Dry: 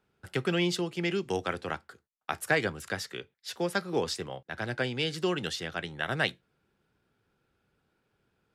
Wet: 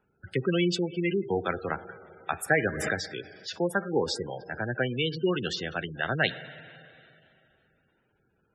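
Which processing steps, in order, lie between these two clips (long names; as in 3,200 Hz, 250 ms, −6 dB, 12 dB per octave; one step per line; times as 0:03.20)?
four-comb reverb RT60 2.7 s, DRR 13 dB
gate on every frequency bin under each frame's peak −15 dB strong
0:02.66–0:03.06: background raised ahead of every attack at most 42 dB per second
level +3 dB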